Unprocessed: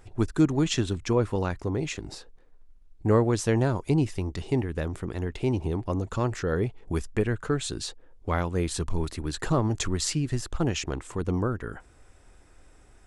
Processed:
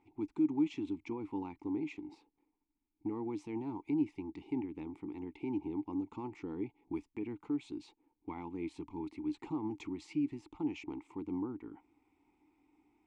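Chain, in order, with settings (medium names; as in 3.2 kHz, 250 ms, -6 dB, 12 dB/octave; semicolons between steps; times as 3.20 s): peak limiter -18 dBFS, peak gain reduction 8 dB; vowel filter u; trim +1 dB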